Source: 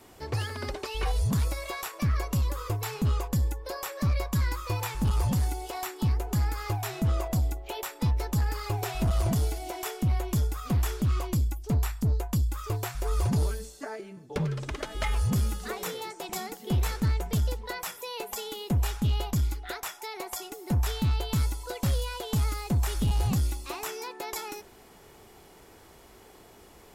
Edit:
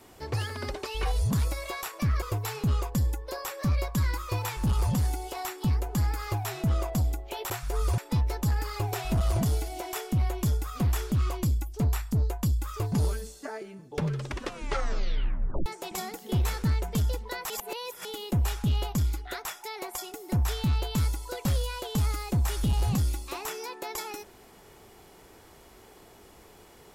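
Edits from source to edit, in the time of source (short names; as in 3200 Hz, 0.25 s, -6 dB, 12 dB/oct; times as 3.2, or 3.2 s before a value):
2.22–2.6 cut
12.82–13.3 move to 7.88
14.63 tape stop 1.41 s
17.88–18.43 reverse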